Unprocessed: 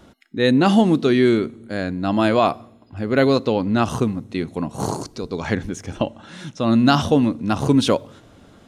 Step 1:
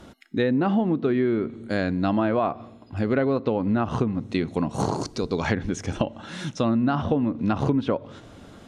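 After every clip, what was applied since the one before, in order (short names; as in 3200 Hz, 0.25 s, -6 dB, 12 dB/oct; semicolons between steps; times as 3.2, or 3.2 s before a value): treble ducked by the level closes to 1800 Hz, closed at -14.5 dBFS; compressor 6:1, threshold -22 dBFS, peak gain reduction 11.5 dB; gain +2.5 dB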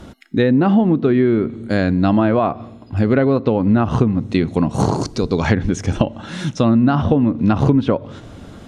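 low shelf 210 Hz +6.5 dB; gain +5.5 dB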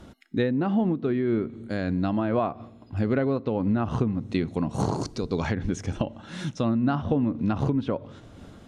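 noise-modulated level, depth 55%; gain -7.5 dB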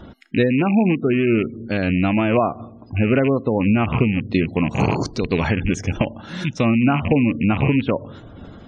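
rattling part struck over -27 dBFS, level -22 dBFS; spectral gate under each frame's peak -30 dB strong; gain +7 dB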